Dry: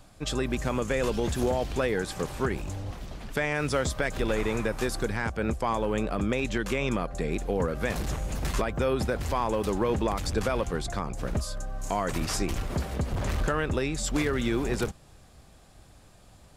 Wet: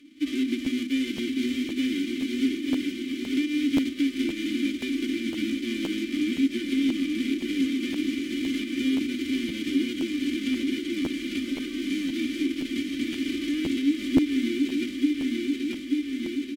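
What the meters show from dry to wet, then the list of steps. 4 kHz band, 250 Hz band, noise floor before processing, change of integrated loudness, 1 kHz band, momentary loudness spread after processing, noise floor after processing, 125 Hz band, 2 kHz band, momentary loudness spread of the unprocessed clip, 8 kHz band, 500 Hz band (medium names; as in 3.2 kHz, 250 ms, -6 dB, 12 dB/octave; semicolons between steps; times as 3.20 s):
+5.5 dB, +8.5 dB, -54 dBFS, +2.0 dB, under -20 dB, 4 LU, -36 dBFS, -15.0 dB, -1.5 dB, 5 LU, -5.5 dB, -8.0 dB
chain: formants flattened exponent 0.1; volume shaper 139 bpm, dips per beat 1, -8 dB, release 150 ms; resonant low shelf 450 Hz +10 dB, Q 3; comb 3.4 ms, depth 88%; feedback delay 883 ms, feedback 58%, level -6 dB; compression 4:1, threshold -22 dBFS, peak gain reduction 9 dB; vowel filter i; hum notches 50/100/150/200/250 Hz; crackling interface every 0.52 s, samples 512, repeat, from 0.64 s; trim +8.5 dB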